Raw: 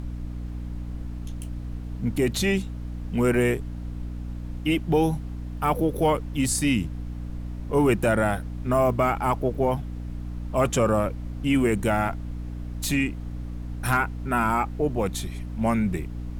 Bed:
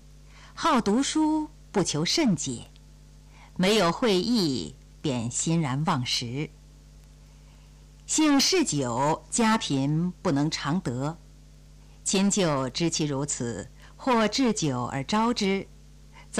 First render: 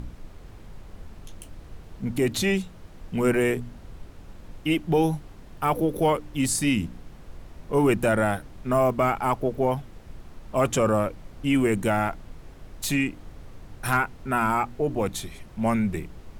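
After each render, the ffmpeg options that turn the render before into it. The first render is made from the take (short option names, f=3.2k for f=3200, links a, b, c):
-af "bandreject=f=60:t=h:w=4,bandreject=f=120:t=h:w=4,bandreject=f=180:t=h:w=4,bandreject=f=240:t=h:w=4,bandreject=f=300:t=h:w=4"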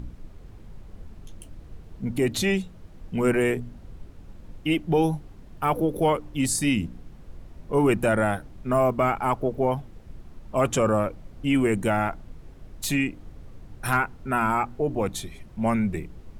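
-af "afftdn=nr=6:nf=-46"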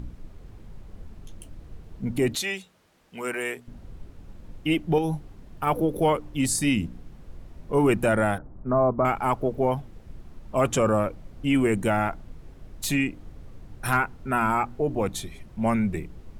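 -filter_complex "[0:a]asettb=1/sr,asplit=3[a][b][c];[a]atrim=end=2.354[d];[b]atrim=start=2.35:end=3.68,asetpts=PTS-STARTPTS,afade=t=in:d=0.004:c=qsin,afade=t=out:st=1.326:d=0.004:c=qsin,highpass=f=1.2k:p=1[e];[c]atrim=start=3.676[f];[d][e]acrossfade=d=0.004:c1=hsin:c2=qsin[g];[g][f]acrossfade=d=0.004:c1=qsin:c2=hsin,asettb=1/sr,asplit=3[h][i][j];[h]atrim=end=4.984[k];[i]atrim=start=4.98:end=5.67,asetpts=PTS-STARTPTS,afade=t=in:d=0.004:c=qsin,afade=t=out:st=0.686:d=0.004:c=qsin,acompressor=threshold=-22dB:ratio=6:attack=3.2:release=140:knee=1:detection=peak[l];[j]atrim=start=5.666[m];[k][l]acrossfade=d=0.004:c1=hsin:c2=qsin[n];[n][m]acrossfade=d=0.004:c1=qsin:c2=hsin,asettb=1/sr,asplit=3[o][p][q];[o]atrim=end=8.384[r];[p]atrim=start=8.38:end=9.05,asetpts=PTS-STARTPTS,afade=t=in:d=0.004:c=qsin,afade=t=out:st=0.666:d=0.004:c=qsin,lowpass=f=1.3k:w=0.5412,lowpass=f=1.3k:w=1.3066[s];[q]atrim=start=9.046[t];[r][s]acrossfade=d=0.004:c1=hsin:c2=qsin[u];[u][t]acrossfade=d=0.004:c1=qsin:c2=hsin"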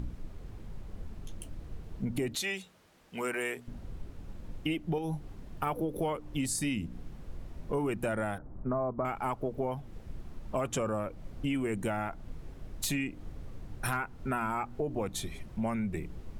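-af "acompressor=threshold=-30dB:ratio=5"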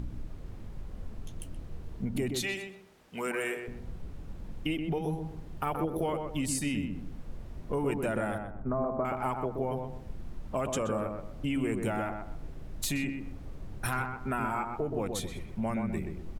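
-filter_complex "[0:a]asplit=2[a][b];[b]adelay=126,lowpass=f=1.4k:p=1,volume=-4dB,asplit=2[c][d];[d]adelay=126,lowpass=f=1.4k:p=1,volume=0.34,asplit=2[e][f];[f]adelay=126,lowpass=f=1.4k:p=1,volume=0.34,asplit=2[g][h];[h]adelay=126,lowpass=f=1.4k:p=1,volume=0.34[i];[a][c][e][g][i]amix=inputs=5:normalize=0"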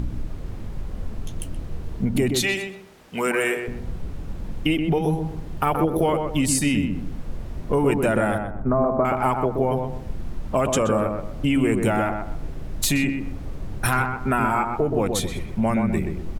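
-af "volume=10.5dB"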